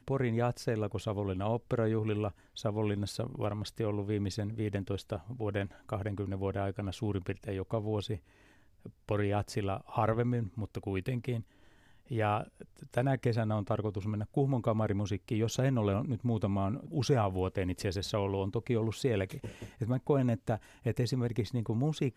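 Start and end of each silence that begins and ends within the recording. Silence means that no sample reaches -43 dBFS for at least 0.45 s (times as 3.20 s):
8.17–8.86 s
11.41–12.11 s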